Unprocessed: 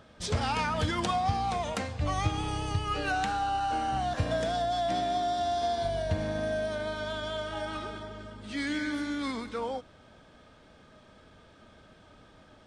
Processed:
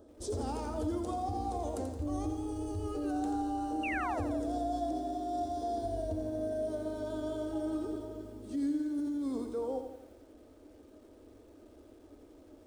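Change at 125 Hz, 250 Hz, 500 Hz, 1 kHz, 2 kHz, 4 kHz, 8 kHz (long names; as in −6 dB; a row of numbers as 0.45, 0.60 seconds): −8.5, +2.0, −4.0, −8.0, −10.5, −17.5, −7.5 decibels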